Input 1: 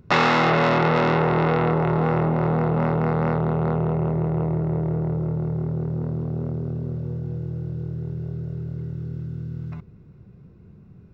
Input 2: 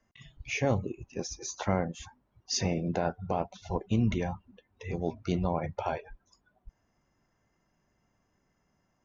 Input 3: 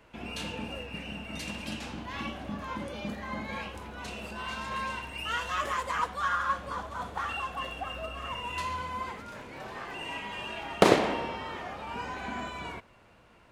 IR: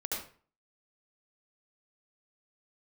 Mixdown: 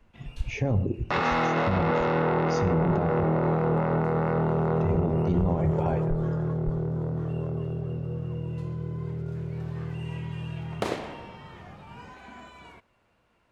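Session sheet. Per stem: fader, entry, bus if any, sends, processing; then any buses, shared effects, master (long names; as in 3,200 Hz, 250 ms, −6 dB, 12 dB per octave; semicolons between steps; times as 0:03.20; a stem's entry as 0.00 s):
−3.0 dB, 1.00 s, send −7.5 dB, high-shelf EQ 3,900 Hz −8 dB; mains-hum notches 60/120/180/240 Hz
+1.0 dB, 0.00 s, muted 0:03.24–0:04.48, send −18.5 dB, spectral tilt −3.5 dB per octave
−9.5 dB, 0.00 s, no send, automatic ducking −11 dB, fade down 0.95 s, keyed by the second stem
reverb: on, RT60 0.40 s, pre-delay 66 ms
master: brickwall limiter −16 dBFS, peak gain reduction 11.5 dB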